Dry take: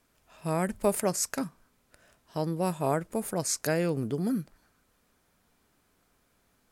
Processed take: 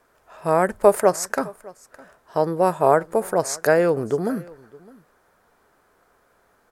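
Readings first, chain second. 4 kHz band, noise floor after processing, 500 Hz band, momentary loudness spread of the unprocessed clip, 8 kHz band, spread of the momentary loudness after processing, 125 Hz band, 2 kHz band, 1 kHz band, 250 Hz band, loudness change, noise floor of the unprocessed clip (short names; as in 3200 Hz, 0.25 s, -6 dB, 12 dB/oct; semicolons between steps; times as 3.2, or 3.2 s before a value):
+1.5 dB, -62 dBFS, +12.0 dB, 9 LU, +1.5 dB, 11 LU, +1.5 dB, +10.5 dB, +12.5 dB, +3.5 dB, +9.0 dB, -70 dBFS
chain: band shelf 820 Hz +11 dB 2.6 oct; echo 0.61 s -23 dB; gain +1.5 dB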